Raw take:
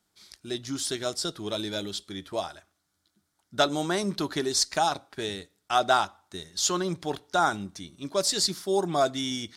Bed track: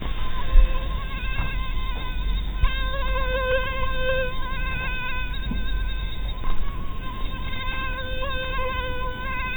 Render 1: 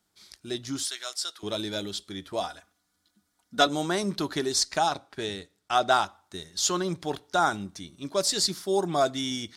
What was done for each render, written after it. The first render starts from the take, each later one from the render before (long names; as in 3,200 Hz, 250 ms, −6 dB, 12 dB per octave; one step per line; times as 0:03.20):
0:00.85–0:01.43: high-pass filter 1,200 Hz
0:02.40–0:03.67: comb filter 4.1 ms, depth 76%
0:04.60–0:05.92: high-shelf EQ 12,000 Hz −9 dB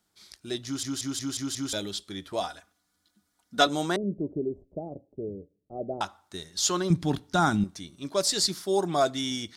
0:00.65: stutter in place 0.18 s, 6 plays
0:03.96–0:06.01: elliptic low-pass filter 550 Hz, stop band 70 dB
0:06.90–0:07.64: low shelf with overshoot 330 Hz +10 dB, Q 1.5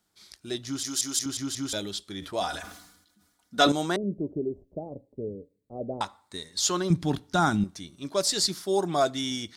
0:00.83–0:01.26: bass and treble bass −11 dB, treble +9 dB
0:02.19–0:03.72: level that may fall only so fast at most 61 dB per second
0:04.83–0:06.60: EQ curve with evenly spaced ripples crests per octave 0.98, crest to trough 7 dB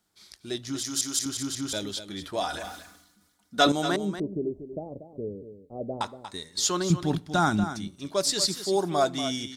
single-tap delay 237 ms −11 dB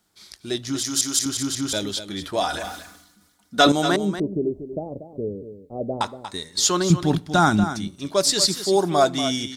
level +6 dB
brickwall limiter −3 dBFS, peak gain reduction 2 dB